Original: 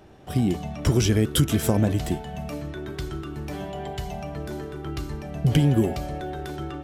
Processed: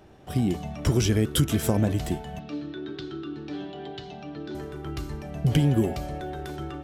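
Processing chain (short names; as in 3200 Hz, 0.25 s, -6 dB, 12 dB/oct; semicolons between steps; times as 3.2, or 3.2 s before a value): 2.39–4.55 speaker cabinet 180–4800 Hz, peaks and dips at 190 Hz -4 dB, 300 Hz +7 dB, 630 Hz -9 dB, 1000 Hz -8 dB, 2100 Hz -7 dB, 3800 Hz +6 dB; gain -2 dB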